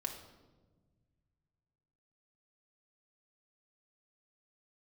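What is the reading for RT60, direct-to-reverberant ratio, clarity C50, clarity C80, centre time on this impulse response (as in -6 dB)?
1.3 s, 2.0 dB, 7.0 dB, 9.0 dB, 25 ms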